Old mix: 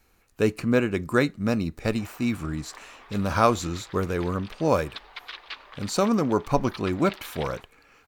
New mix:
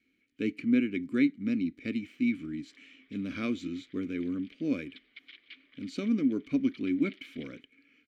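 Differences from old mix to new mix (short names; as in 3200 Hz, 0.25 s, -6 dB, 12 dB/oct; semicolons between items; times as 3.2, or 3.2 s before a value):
speech +5.0 dB; master: add vowel filter i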